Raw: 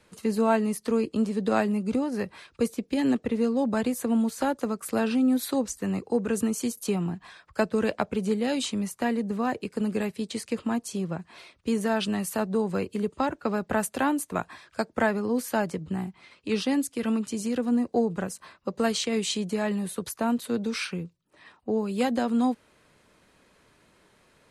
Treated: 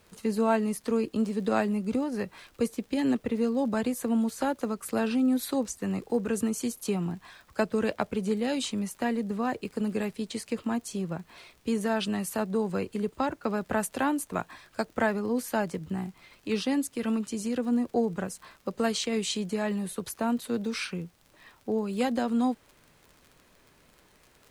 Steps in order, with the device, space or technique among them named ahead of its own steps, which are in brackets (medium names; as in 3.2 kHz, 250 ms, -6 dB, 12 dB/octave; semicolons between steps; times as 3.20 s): vinyl LP (crackle 47 per s -40 dBFS; pink noise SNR 35 dB); trim -2 dB